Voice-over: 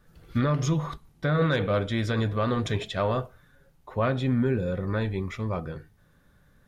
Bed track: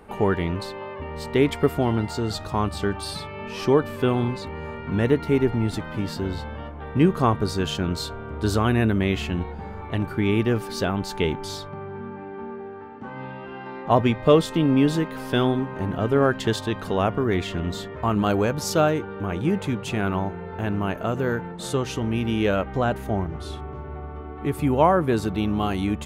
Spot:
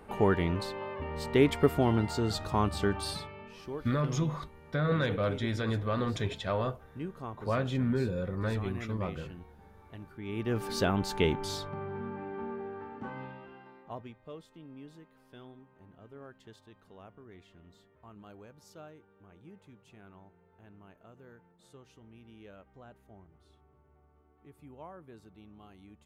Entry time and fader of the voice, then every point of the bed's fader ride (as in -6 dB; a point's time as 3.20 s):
3.50 s, -5.0 dB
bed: 3.10 s -4 dB
3.68 s -21 dB
10.18 s -21 dB
10.67 s -3.5 dB
13.05 s -3.5 dB
14.22 s -30 dB